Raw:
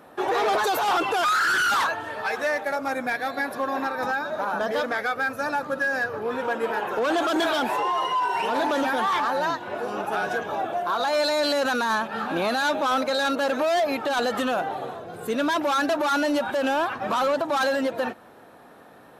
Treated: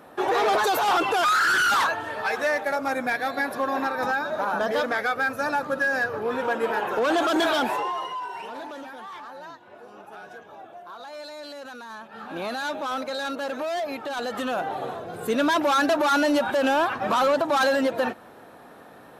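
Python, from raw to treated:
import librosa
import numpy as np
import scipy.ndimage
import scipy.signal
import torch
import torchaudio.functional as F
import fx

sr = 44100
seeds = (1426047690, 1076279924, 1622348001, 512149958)

y = fx.gain(x, sr, db=fx.line((7.62, 1.0), (8.14, -8.0), (8.94, -16.0), (11.94, -16.0), (12.43, -6.0), (14.2, -6.0), (14.91, 2.0)))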